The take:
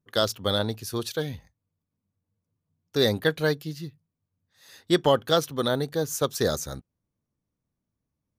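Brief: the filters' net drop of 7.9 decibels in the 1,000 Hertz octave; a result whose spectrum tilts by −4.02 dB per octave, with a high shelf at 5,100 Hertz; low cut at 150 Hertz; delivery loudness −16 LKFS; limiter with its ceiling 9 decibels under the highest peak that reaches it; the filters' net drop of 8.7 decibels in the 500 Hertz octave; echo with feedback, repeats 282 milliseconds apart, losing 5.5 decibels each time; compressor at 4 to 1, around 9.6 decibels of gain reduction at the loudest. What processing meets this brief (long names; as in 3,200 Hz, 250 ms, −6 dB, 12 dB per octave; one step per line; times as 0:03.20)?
high-pass filter 150 Hz
parametric band 500 Hz −8.5 dB
parametric band 1,000 Hz −8 dB
high-shelf EQ 5,100 Hz −7.5 dB
downward compressor 4 to 1, threshold −33 dBFS
brickwall limiter −29 dBFS
repeating echo 282 ms, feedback 53%, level −5.5 dB
level +25 dB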